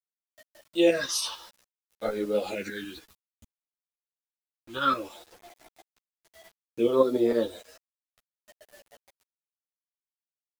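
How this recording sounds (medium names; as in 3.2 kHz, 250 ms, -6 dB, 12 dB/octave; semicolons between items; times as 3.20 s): phasing stages 6, 0.59 Hz, lowest notch 540–2800 Hz; tremolo saw up 6.7 Hz, depth 60%; a quantiser's noise floor 10-bit, dither none; a shimmering, thickened sound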